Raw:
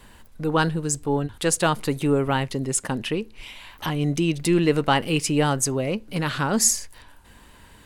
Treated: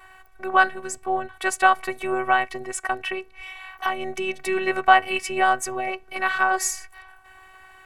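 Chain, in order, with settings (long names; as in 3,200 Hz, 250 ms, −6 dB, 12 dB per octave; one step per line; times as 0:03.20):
phases set to zero 377 Hz
flat-topped bell 1,200 Hz +14 dB 2.5 octaves
level −5 dB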